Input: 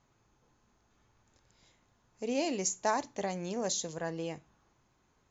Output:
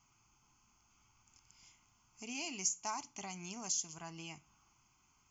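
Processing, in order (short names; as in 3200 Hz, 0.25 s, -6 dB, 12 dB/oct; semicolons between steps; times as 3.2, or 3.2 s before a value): tilt shelf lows -6 dB, about 1400 Hz; compressor 1.5:1, threshold -49 dBFS, peak gain reduction 9.5 dB; fixed phaser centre 2600 Hz, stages 8; gain +2.5 dB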